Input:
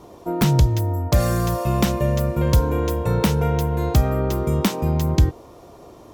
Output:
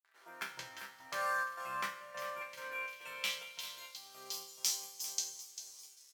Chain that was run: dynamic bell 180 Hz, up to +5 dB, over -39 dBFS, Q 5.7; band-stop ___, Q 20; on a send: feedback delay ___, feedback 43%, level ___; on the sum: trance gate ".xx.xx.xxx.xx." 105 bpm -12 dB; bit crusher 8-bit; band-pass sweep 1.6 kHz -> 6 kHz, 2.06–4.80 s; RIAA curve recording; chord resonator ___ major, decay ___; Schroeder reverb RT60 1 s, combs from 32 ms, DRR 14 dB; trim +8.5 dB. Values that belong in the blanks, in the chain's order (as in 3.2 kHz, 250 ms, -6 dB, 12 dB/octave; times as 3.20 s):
3.7 kHz, 396 ms, -11 dB, C3, 0.34 s